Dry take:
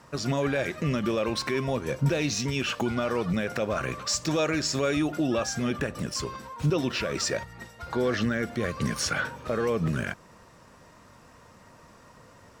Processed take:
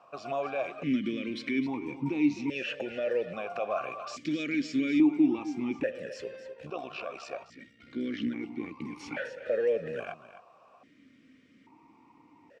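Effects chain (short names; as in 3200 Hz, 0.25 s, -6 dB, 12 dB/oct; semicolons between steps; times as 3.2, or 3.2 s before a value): 6.52–9 AM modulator 63 Hz, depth 50%; echo 0.26 s -13 dB; vowel sequencer 1.2 Hz; gain +7 dB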